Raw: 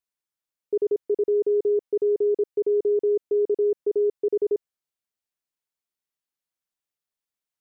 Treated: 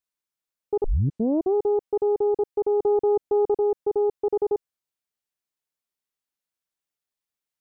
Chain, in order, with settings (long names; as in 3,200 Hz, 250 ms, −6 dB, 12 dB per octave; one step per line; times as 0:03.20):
0:00.84: tape start 0.70 s
0:02.80–0:03.57: low-shelf EQ 350 Hz +3.5 dB
highs frequency-modulated by the lows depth 0.75 ms